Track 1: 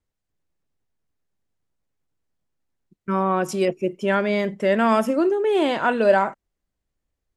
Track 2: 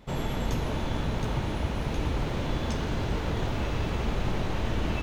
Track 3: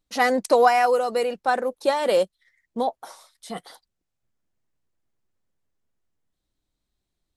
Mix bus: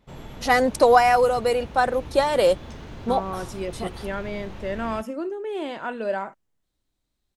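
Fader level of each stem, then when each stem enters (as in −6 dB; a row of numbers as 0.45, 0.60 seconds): −10.0, −9.5, +1.5 decibels; 0.00, 0.00, 0.30 seconds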